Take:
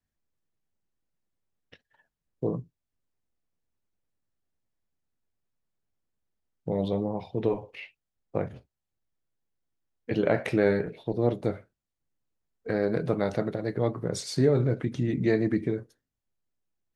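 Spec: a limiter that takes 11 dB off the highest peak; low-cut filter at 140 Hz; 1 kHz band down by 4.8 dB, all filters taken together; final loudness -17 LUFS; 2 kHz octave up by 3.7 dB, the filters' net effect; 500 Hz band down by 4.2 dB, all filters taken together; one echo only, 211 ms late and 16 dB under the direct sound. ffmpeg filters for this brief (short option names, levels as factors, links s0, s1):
-af "highpass=140,equalizer=f=500:t=o:g=-4,equalizer=f=1000:t=o:g=-7,equalizer=f=2000:t=o:g=7,alimiter=limit=0.0708:level=0:latency=1,aecho=1:1:211:0.158,volume=7.94"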